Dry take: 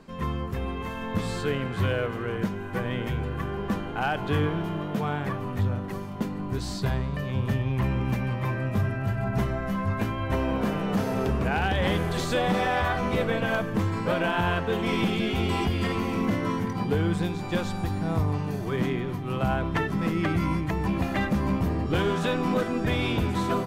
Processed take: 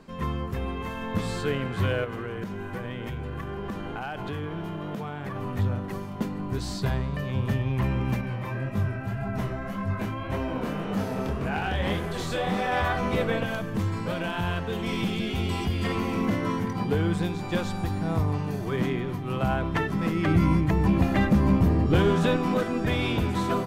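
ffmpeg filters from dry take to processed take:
ffmpeg -i in.wav -filter_complex "[0:a]asettb=1/sr,asplit=3[link_01][link_02][link_03];[link_01]atrim=end=2.044[link_04];[link_02]atrim=start=2.04:end=5.36,asetpts=PTS-STARTPTS,afade=type=in:duration=0.004:curve=qsin,afade=type=out:start_time=3.316:duration=0.004:curve=qsin,acompressor=threshold=-29dB:ratio=6:attack=3.2:release=140:knee=1:detection=peak[link_05];[link_03]atrim=start=5.356[link_06];[link_04][link_05]acrossfade=duration=0.004:curve1=hsin:curve2=qsin[link_07];[link_07][link_06]acrossfade=duration=0.004:curve1=qsin:curve2=hsin,asettb=1/sr,asplit=3[link_08][link_09][link_10];[link_08]atrim=end=8.214[link_11];[link_09]atrim=start=8.21:end=12.72,asetpts=PTS-STARTPTS,afade=type=in:duration=0.004:curve=qsin,afade=type=out:start_time=4.506:duration=0.004:curve=qsin,flanger=delay=19.5:depth=7.1:speed=1.8[link_12];[link_10]atrim=start=12.716[link_13];[link_11][link_12]acrossfade=duration=0.004:curve1=hsin:curve2=qsin[link_14];[link_14][link_13]acrossfade=duration=0.004:curve1=qsin:curve2=hsin,asettb=1/sr,asplit=3[link_15][link_16][link_17];[link_15]atrim=end=13.434[link_18];[link_16]atrim=start=13.43:end=15.85,asetpts=PTS-STARTPTS,afade=type=in:duration=0.004:curve=qsin,afade=type=out:start_time=2.416:duration=0.004:curve=qsin,acrossover=split=210|3000[link_19][link_20][link_21];[link_20]acompressor=threshold=-39dB:ratio=1.5:attack=3.2:release=140:knee=2.83:detection=peak[link_22];[link_19][link_22][link_21]amix=inputs=3:normalize=0[link_23];[link_17]atrim=start=15.846[link_24];[link_18][link_23]acrossfade=duration=0.004:curve1=hsin:curve2=qsin[link_25];[link_25][link_24]acrossfade=duration=0.004:curve1=qsin:curve2=hsin,asettb=1/sr,asplit=3[link_26][link_27][link_28];[link_26]atrim=end=20.274[link_29];[link_27]atrim=start=20.27:end=22.37,asetpts=PTS-STARTPTS,afade=type=in:duration=0.004:curve=qsin,afade=type=out:start_time=2.096:duration=0.004:curve=qsin,lowshelf=frequency=470:gain=6[link_30];[link_28]atrim=start=22.366[link_31];[link_29][link_30]acrossfade=duration=0.004:curve1=hsin:curve2=qsin[link_32];[link_32][link_31]acrossfade=duration=0.004:curve1=qsin:curve2=hsin" out.wav

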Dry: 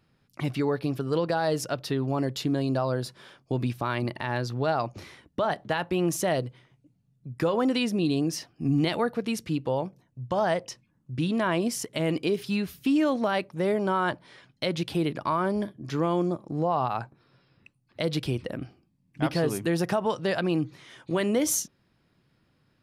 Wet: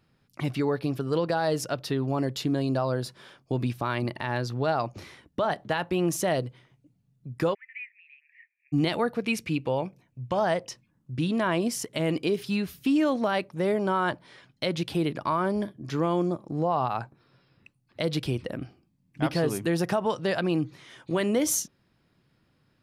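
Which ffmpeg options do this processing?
ffmpeg -i in.wav -filter_complex "[0:a]asplit=3[link_01][link_02][link_03];[link_01]afade=type=out:start_time=7.53:duration=0.02[link_04];[link_02]asuperpass=centerf=2100:order=8:qfactor=3.2,afade=type=in:start_time=7.53:duration=0.02,afade=type=out:start_time=8.72:duration=0.02[link_05];[link_03]afade=type=in:start_time=8.72:duration=0.02[link_06];[link_04][link_05][link_06]amix=inputs=3:normalize=0,asettb=1/sr,asplit=3[link_07][link_08][link_09];[link_07]atrim=end=9.234[link_10];[link_08]atrim=start=9.23:end=10.37,asetpts=PTS-STARTPTS,afade=type=in:duration=0.004:curve=qsin,afade=type=out:start_time=1.136:duration=0.004:curve=qsin,equalizer=frequency=2400:width_type=o:width=0.33:gain=11.5[link_11];[link_09]atrim=start=10.366[link_12];[link_10][link_11]acrossfade=duration=0.004:curve1=hsin:curve2=qsin[link_13];[link_13][link_12]acrossfade=duration=0.004:curve1=qsin:curve2=hsin" out.wav

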